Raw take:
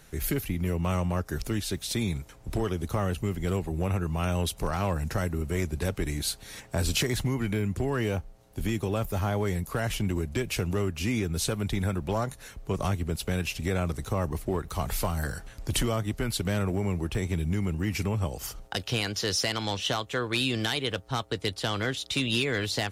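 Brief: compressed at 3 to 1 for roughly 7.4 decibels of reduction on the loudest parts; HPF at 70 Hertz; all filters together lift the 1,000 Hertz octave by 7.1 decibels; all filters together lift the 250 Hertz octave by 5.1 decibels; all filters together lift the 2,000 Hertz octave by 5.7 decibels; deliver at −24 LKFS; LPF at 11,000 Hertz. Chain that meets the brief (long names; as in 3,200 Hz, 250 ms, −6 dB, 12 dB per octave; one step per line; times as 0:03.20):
high-pass filter 70 Hz
low-pass filter 11,000 Hz
parametric band 250 Hz +6.5 dB
parametric band 1,000 Hz +7.5 dB
parametric band 2,000 Hz +5 dB
downward compressor 3 to 1, threshold −30 dBFS
level +9 dB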